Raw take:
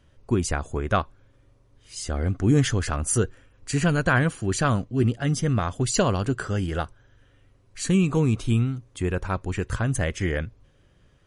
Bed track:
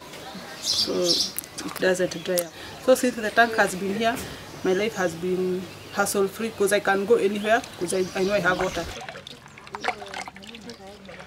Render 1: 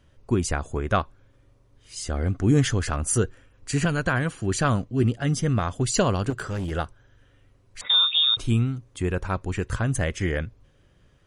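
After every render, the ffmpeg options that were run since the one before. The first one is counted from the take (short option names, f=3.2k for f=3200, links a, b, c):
-filter_complex "[0:a]asettb=1/sr,asplit=3[a][b][c];[a]atrim=end=3.854[d];[b]atrim=start=3.85:end=4.42,asetpts=PTS-STARTPTS,afade=t=in:d=0.004:c=qsin,afade=t=out:st=0.566:d=0.004:c=qsin,acrossover=split=750|5300[e][f][g];[e]acompressor=threshold=-22dB:ratio=4[h];[f]acompressor=threshold=-23dB:ratio=4[i];[g]acompressor=threshold=-47dB:ratio=4[j];[h][i][j]amix=inputs=3:normalize=0[k];[c]atrim=start=4.416[l];[d][k]acrossfade=d=0.004:c1=hsin:c2=qsin[m];[m][l]acrossfade=d=0.004:c1=qsin:c2=hsin,asettb=1/sr,asplit=3[n][o][p];[n]atrim=end=6.304[q];[o]atrim=start=6.3:end=6.71,asetpts=PTS-STARTPTS,afade=t=in:d=0.004:c=qsin,afade=t=out:st=0.406:d=0.004:c=qsin,asoftclip=type=hard:threshold=-25.5dB[r];[p]atrim=start=6.706[s];[q][r]acrossfade=d=0.004:c1=hsin:c2=qsin[t];[t][s]acrossfade=d=0.004:c1=qsin:c2=hsin,asettb=1/sr,asplit=3[u][v][w];[u]atrim=end=7.814[x];[v]atrim=start=7.81:end=8.37,asetpts=PTS-STARTPTS,afade=t=in:d=0.004:c=qsin,afade=t=out:st=0.556:d=0.004:c=qsin,lowpass=f=3.2k:t=q:w=0.5098,lowpass=f=3.2k:t=q:w=0.6013,lowpass=f=3.2k:t=q:w=0.9,lowpass=f=3.2k:t=q:w=2.563,afreqshift=-3800[y];[w]atrim=start=8.366[z];[x][y]acrossfade=d=0.004:c1=hsin:c2=qsin[aa];[aa][z]acrossfade=d=0.004:c1=qsin:c2=hsin"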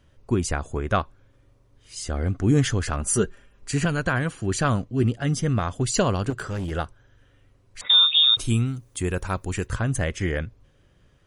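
-filter_complex "[0:a]asettb=1/sr,asplit=3[a][b][c];[a]atrim=end=3.004[d];[b]atrim=start=3:end=3.7,asetpts=PTS-STARTPTS,afade=t=in:d=0.004:c=qsin,afade=t=out:st=0.696:d=0.004:c=qsin,aecho=1:1:5:0.56,atrim=end_sample=30870[e];[c]atrim=start=3.696[f];[d][e]acrossfade=d=0.004:c1=hsin:c2=qsin[g];[g][f]acrossfade=d=0.004:c1=qsin:c2=hsin,asettb=1/sr,asplit=3[h][i][j];[h]atrim=end=7.894[k];[i]atrim=start=7.89:end=9.67,asetpts=PTS-STARTPTS,afade=t=in:d=0.004:c=qsin,afade=t=out:st=1.776:d=0.004:c=qsin,aemphasis=mode=production:type=50fm[l];[j]atrim=start=9.666[m];[k][l]acrossfade=d=0.004:c1=hsin:c2=qsin[n];[n][m]acrossfade=d=0.004:c1=qsin:c2=hsin"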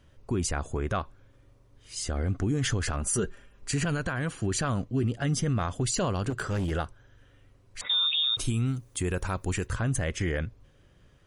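-af "alimiter=limit=-19dB:level=0:latency=1:release=50"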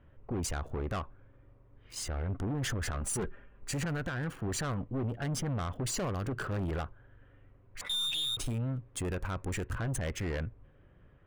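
-filter_complex "[0:a]acrossover=split=2500[a][b];[b]aeval=exprs='sgn(val(0))*max(abs(val(0))-0.00562,0)':c=same[c];[a][c]amix=inputs=2:normalize=0,aeval=exprs='(tanh(31.6*val(0)+0.25)-tanh(0.25))/31.6':c=same"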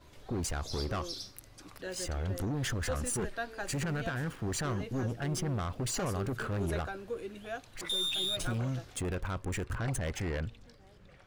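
-filter_complex "[1:a]volume=-19.5dB[a];[0:a][a]amix=inputs=2:normalize=0"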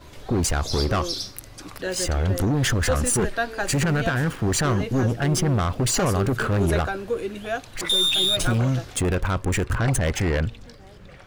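-af "volume=12dB"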